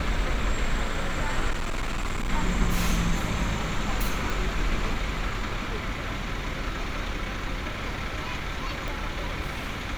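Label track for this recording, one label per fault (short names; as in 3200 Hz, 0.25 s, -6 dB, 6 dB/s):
1.500000	2.300000	clipped -25 dBFS
4.300000	4.300000	pop
8.880000	8.880000	pop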